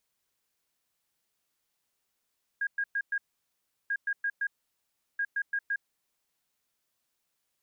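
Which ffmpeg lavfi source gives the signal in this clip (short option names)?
-f lavfi -i "aevalsrc='0.0473*sin(2*PI*1630*t)*clip(min(mod(mod(t,1.29),0.17),0.06-mod(mod(t,1.29),0.17))/0.005,0,1)*lt(mod(t,1.29),0.68)':d=3.87:s=44100"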